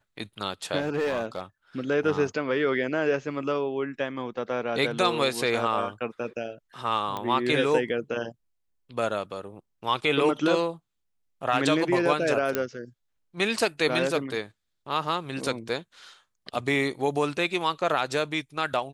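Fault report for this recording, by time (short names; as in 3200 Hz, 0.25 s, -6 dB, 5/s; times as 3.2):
0.8–1.42 clipped -22.5 dBFS
7.17 pop -18 dBFS
12.55 pop -10 dBFS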